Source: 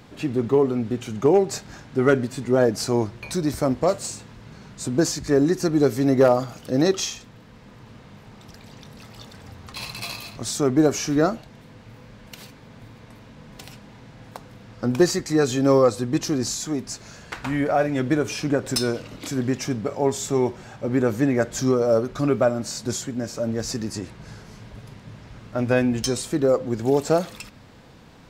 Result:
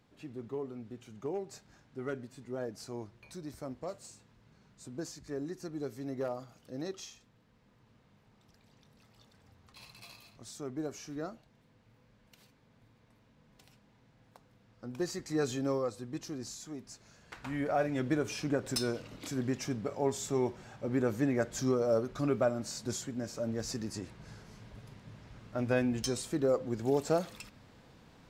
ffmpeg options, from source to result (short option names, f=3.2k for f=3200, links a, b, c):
-af "volume=-3.5dB,afade=t=in:st=14.91:d=0.56:silence=0.354813,afade=t=out:st=15.47:d=0.32:silence=0.501187,afade=t=in:st=17.21:d=0.57:silence=0.421697"